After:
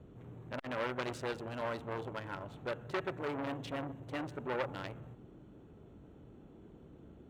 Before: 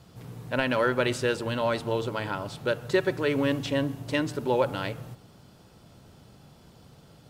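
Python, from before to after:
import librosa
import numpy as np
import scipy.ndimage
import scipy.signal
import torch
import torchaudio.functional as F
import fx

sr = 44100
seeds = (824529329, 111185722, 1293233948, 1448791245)

y = fx.wiener(x, sr, points=9)
y = fx.dmg_noise_band(y, sr, seeds[0], low_hz=37.0, high_hz=390.0, level_db=-48.0)
y = fx.transformer_sat(y, sr, knee_hz=1900.0)
y = y * librosa.db_to_amplitude(-8.0)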